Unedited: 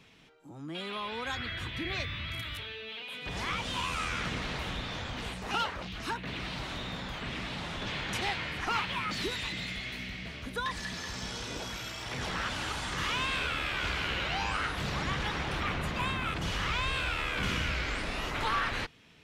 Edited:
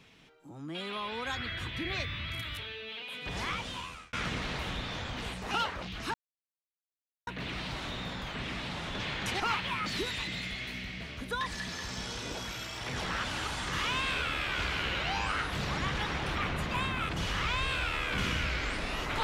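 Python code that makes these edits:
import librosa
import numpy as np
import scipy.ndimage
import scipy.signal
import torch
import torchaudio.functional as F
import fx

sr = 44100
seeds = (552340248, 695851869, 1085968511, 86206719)

y = fx.edit(x, sr, fx.fade_out_span(start_s=3.43, length_s=0.7),
    fx.insert_silence(at_s=6.14, length_s=1.13),
    fx.cut(start_s=8.27, length_s=0.38), tone=tone)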